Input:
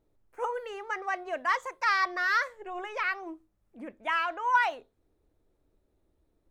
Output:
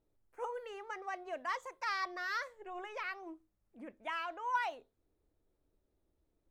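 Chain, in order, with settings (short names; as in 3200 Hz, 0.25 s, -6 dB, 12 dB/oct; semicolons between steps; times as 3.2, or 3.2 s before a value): dynamic EQ 1600 Hz, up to -5 dB, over -39 dBFS, Q 1.1; gain -7 dB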